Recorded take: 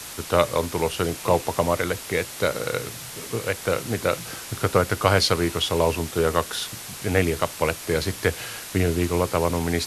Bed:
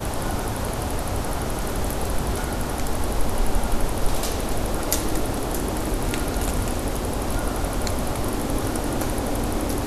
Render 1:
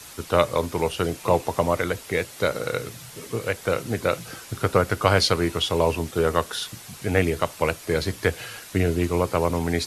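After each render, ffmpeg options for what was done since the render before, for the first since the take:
-af "afftdn=nr=7:nf=-37"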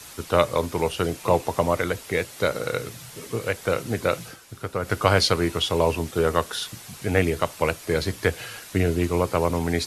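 -filter_complex "[0:a]asplit=3[a][b][c];[a]atrim=end=4.37,asetpts=PTS-STARTPTS,afade=t=out:st=4.25:d=0.12:silence=0.375837[d];[b]atrim=start=4.37:end=4.8,asetpts=PTS-STARTPTS,volume=-8.5dB[e];[c]atrim=start=4.8,asetpts=PTS-STARTPTS,afade=t=in:d=0.12:silence=0.375837[f];[d][e][f]concat=n=3:v=0:a=1"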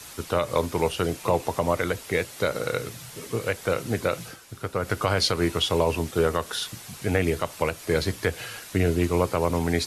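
-af "alimiter=limit=-10.5dB:level=0:latency=1:release=105"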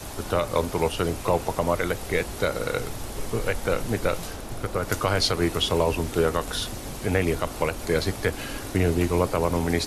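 -filter_complex "[1:a]volume=-11dB[a];[0:a][a]amix=inputs=2:normalize=0"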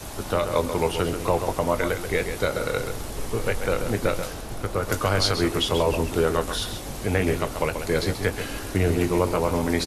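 -filter_complex "[0:a]asplit=2[a][b];[b]adelay=20,volume=-12.5dB[c];[a][c]amix=inputs=2:normalize=0,asplit=2[d][e];[e]adelay=134.1,volume=-8dB,highshelf=f=4k:g=-3.02[f];[d][f]amix=inputs=2:normalize=0"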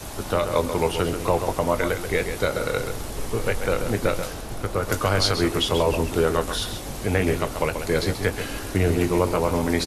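-af "volume=1dB"

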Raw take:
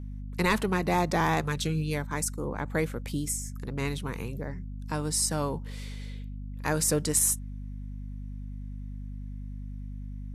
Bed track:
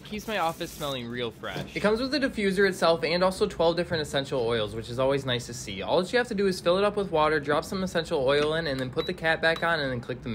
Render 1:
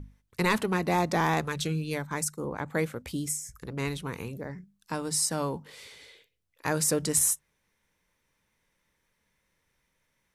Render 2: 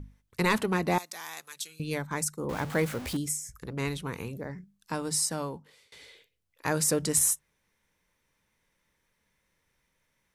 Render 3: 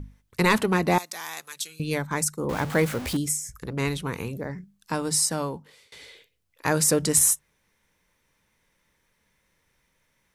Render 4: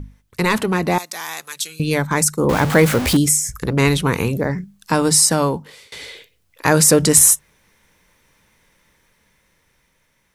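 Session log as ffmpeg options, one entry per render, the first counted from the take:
-af "bandreject=f=50:t=h:w=6,bandreject=f=100:t=h:w=6,bandreject=f=150:t=h:w=6,bandreject=f=200:t=h:w=6,bandreject=f=250:t=h:w=6"
-filter_complex "[0:a]asettb=1/sr,asplit=3[a][b][c];[a]atrim=end=0.984[d];[b]atrim=start=0.98:end=1.8,asetpts=PTS-STARTPTS,afade=t=in:d=0.004:c=qsin,afade=t=out:st=0.816:d=0.004:c=qsin,aderivative[e];[c]atrim=start=1.796[f];[d][e]acrossfade=d=0.004:c1=hsin:c2=qsin[g];[g][f]acrossfade=d=0.004:c1=qsin:c2=hsin,asettb=1/sr,asplit=3[h][i][j];[h]atrim=end=2.494[k];[i]atrim=start=2.49:end=3.17,asetpts=PTS-STARTPTS,afade=t=in:d=0.004:c=qsin,afade=t=out:st=0.676:d=0.004:c=qsin,aeval=exprs='val(0)+0.5*0.0188*sgn(val(0))':c=same[l];[j]atrim=start=3.166[m];[k][l]acrossfade=d=0.004:c1=hsin:c2=qsin[n];[n][m]acrossfade=d=0.004:c1=qsin:c2=hsin,asplit=2[o][p];[o]atrim=end=5.92,asetpts=PTS-STARTPTS,afade=t=out:st=5.14:d=0.78:silence=0.0668344[q];[p]atrim=start=5.92,asetpts=PTS-STARTPTS,afade=t=in:d=0.004:c=hsin:silence=0.0668344[r];[q][r]concat=n=2:v=0:a=1"
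-af "volume=5dB"
-filter_complex "[0:a]asplit=2[a][b];[b]alimiter=limit=-20.5dB:level=0:latency=1:release=21,volume=-1dB[c];[a][c]amix=inputs=2:normalize=0,dynaudnorm=f=530:g=7:m=11.5dB"

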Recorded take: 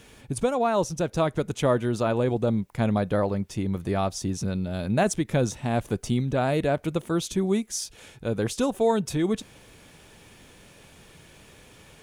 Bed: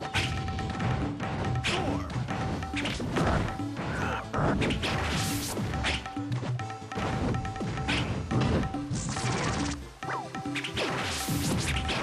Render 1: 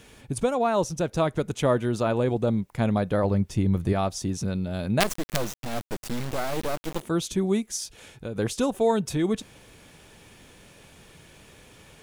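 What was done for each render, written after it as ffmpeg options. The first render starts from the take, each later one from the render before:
-filter_complex "[0:a]asettb=1/sr,asplit=3[a][b][c];[a]atrim=end=3.244[d];[b]atrim=start=3.24:end=3.93,asetpts=PTS-STARTPTS,afade=t=in:d=0.004:c=qsin,afade=t=out:st=0.686:d=0.004:c=qsin,lowshelf=f=180:g=9[e];[c]atrim=start=3.926[f];[d][e]acrossfade=d=0.004:c1=hsin:c2=qsin[g];[g][f]acrossfade=d=0.004:c1=qsin:c2=hsin,asettb=1/sr,asplit=3[h][i][j];[h]atrim=end=5.004[k];[i]atrim=start=5:end=7.01,asetpts=PTS-STARTPTS,afade=t=in:d=0.004:c=qsin,afade=t=out:st=2.006:d=0.004:c=qsin,acrusher=bits=3:dc=4:mix=0:aa=0.000001[l];[j]atrim=start=7.006[m];[k][l]acrossfade=d=0.004:c1=hsin:c2=qsin[n];[n][m]acrossfade=d=0.004:c1=qsin:c2=hsin,asettb=1/sr,asplit=3[o][p][q];[o]atrim=end=7.764[r];[p]atrim=start=7.76:end=8.36,asetpts=PTS-STARTPTS,afade=t=in:d=0.004:c=qsin,afade=t=out:st=0.596:d=0.004:c=qsin,acompressor=threshold=-28dB:ratio=5:attack=3.2:release=140:knee=1:detection=peak[s];[q]atrim=start=8.356[t];[r][s]acrossfade=d=0.004:c1=hsin:c2=qsin[u];[u][t]acrossfade=d=0.004:c1=qsin:c2=hsin"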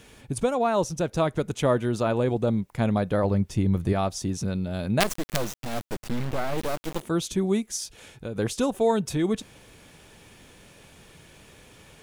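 -filter_complex "[0:a]asettb=1/sr,asplit=3[a][b][c];[a]atrim=end=5.964[d];[b]atrim=start=5.96:end=6.58,asetpts=PTS-STARTPTS,afade=t=in:d=0.004:c=qsin,afade=t=out:st=0.616:d=0.004:c=qsin,bass=f=250:g=3,treble=f=4k:g=-7[e];[c]atrim=start=6.576[f];[d][e]acrossfade=d=0.004:c1=hsin:c2=qsin[g];[g][f]acrossfade=d=0.004:c1=qsin:c2=hsin"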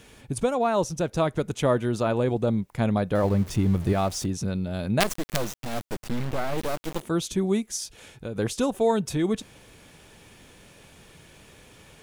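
-filter_complex "[0:a]asettb=1/sr,asplit=3[a][b][c];[a]atrim=end=3.154[d];[b]atrim=start=3.15:end=4.26,asetpts=PTS-STARTPTS,afade=t=in:d=0.004:c=qsin,afade=t=out:st=1.106:d=0.004:c=qsin,aeval=exprs='val(0)+0.5*0.0168*sgn(val(0))':c=same[e];[c]atrim=start=4.256[f];[d][e]acrossfade=d=0.004:c1=hsin:c2=qsin[g];[g][f]acrossfade=d=0.004:c1=qsin:c2=hsin"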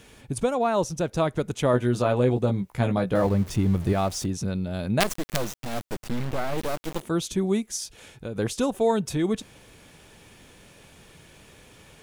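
-filter_complex "[0:a]asettb=1/sr,asplit=3[a][b][c];[a]atrim=end=1.724[d];[b]atrim=start=1.72:end=3.27,asetpts=PTS-STARTPTS,afade=t=in:d=0.004:c=qsin,afade=t=out:st=1.546:d=0.004:c=qsin,asplit=2[e][f];[f]adelay=16,volume=-4.5dB[g];[e][g]amix=inputs=2:normalize=0,atrim=end_sample=68355[h];[c]atrim=start=3.266[i];[d][h]acrossfade=d=0.004:c1=hsin:c2=qsin[j];[j][i]acrossfade=d=0.004:c1=qsin:c2=hsin"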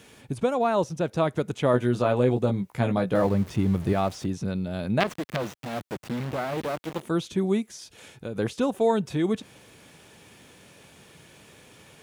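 -filter_complex "[0:a]acrossover=split=3800[a][b];[b]acompressor=threshold=-46dB:ratio=4:attack=1:release=60[c];[a][c]amix=inputs=2:normalize=0,highpass=97"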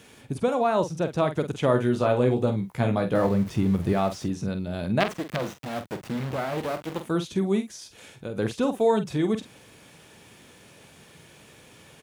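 -filter_complex "[0:a]asplit=2[a][b];[b]adelay=46,volume=-9.5dB[c];[a][c]amix=inputs=2:normalize=0"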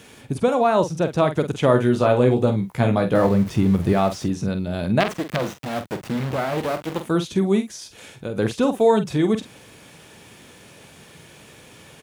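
-af "volume=5dB,alimiter=limit=-3dB:level=0:latency=1"

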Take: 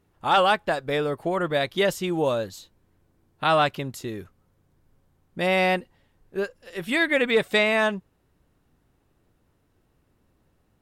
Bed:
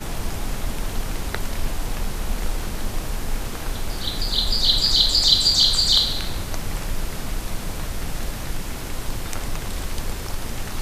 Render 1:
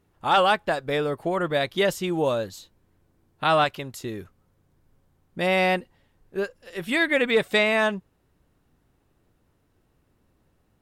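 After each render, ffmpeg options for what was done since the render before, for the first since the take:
-filter_complex "[0:a]asettb=1/sr,asplit=3[a][b][c];[a]atrim=end=3.644[d];[b]atrim=start=3.64:end=4.04,asetpts=PTS-STARTPTS,afade=t=in:d=0.004:c=qsin,afade=t=out:st=0.396:d=0.004:c=qsin,equalizer=f=190:t=o:w=2:g=-6[e];[c]atrim=start=4.036[f];[d][e]acrossfade=d=0.004:c1=hsin:c2=qsin[g];[g][f]acrossfade=d=0.004:c1=qsin:c2=hsin"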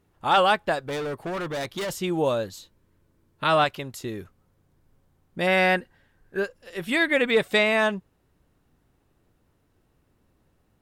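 -filter_complex "[0:a]asettb=1/sr,asplit=3[a][b][c];[a]atrim=end=0.874[d];[b]atrim=start=0.87:end=2.01,asetpts=PTS-STARTPTS,afade=t=in:d=0.004:c=qsin,afade=t=out:st=1.136:d=0.004:c=qsin,volume=27.5dB,asoftclip=hard,volume=-27.5dB[e];[c]atrim=start=2.006[f];[d][e]acrossfade=d=0.004:c1=hsin:c2=qsin[g];[g][f]acrossfade=d=0.004:c1=qsin:c2=hsin,asettb=1/sr,asplit=3[h][i][j];[h]atrim=end=2.524[k];[i]atrim=start=2.52:end=3.56,asetpts=PTS-STARTPTS,afade=t=in:d=0.004:c=qsin,afade=t=out:st=1.036:d=0.004:c=qsin,asuperstop=centerf=750:order=4:qfactor=6.4[l];[j]atrim=start=3.556[m];[k][l]acrossfade=d=0.004:c1=hsin:c2=qsin[n];[n][m]acrossfade=d=0.004:c1=qsin:c2=hsin,asettb=1/sr,asplit=3[o][p][q];[o]atrim=end=5.474[r];[p]atrim=start=5.47:end=6.42,asetpts=PTS-STARTPTS,afade=t=in:d=0.004:c=qsin,afade=t=out:st=0.946:d=0.004:c=qsin,equalizer=f=1.6k:w=5.3:g=13.5[s];[q]atrim=start=6.416[t];[r][s]acrossfade=d=0.004:c1=hsin:c2=qsin[u];[u][t]acrossfade=d=0.004:c1=qsin:c2=hsin"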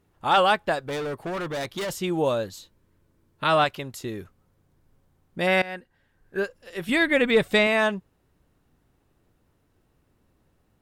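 -filter_complex "[0:a]asettb=1/sr,asplit=3[a][b][c];[a]atrim=end=6.894[d];[b]atrim=start=6.89:end=7.67,asetpts=PTS-STARTPTS,afade=t=in:d=0.004:c=qsin,afade=t=out:st=0.776:d=0.004:c=qsin,lowshelf=f=150:g=12[e];[c]atrim=start=7.666[f];[d][e]acrossfade=d=0.004:c1=hsin:c2=qsin[g];[g][f]acrossfade=d=0.004:c1=qsin:c2=hsin,asplit=2[h][i];[h]atrim=end=5.62,asetpts=PTS-STARTPTS,afade=t=out:st=5.616:d=0.004:c=hsin:silence=0.0944061[j];[i]atrim=start=5.62,asetpts=PTS-STARTPTS,afade=t=in:d=0.77:silence=0.0944061[k];[j][k]concat=n=2:v=0:a=1"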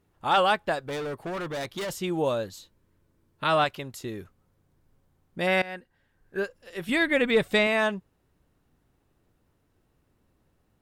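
-af "volume=-2.5dB"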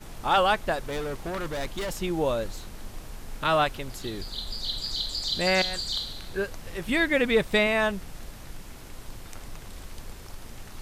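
-filter_complex "[1:a]volume=-13.5dB[a];[0:a][a]amix=inputs=2:normalize=0"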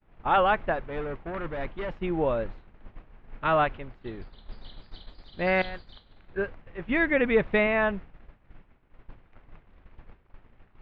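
-af "lowpass=f=2.5k:w=0.5412,lowpass=f=2.5k:w=1.3066,agate=range=-33dB:threshold=-29dB:ratio=3:detection=peak"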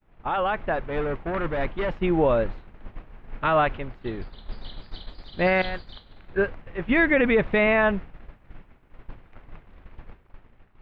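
-af "alimiter=limit=-18.5dB:level=0:latency=1:release=30,dynaudnorm=f=130:g=11:m=6.5dB"

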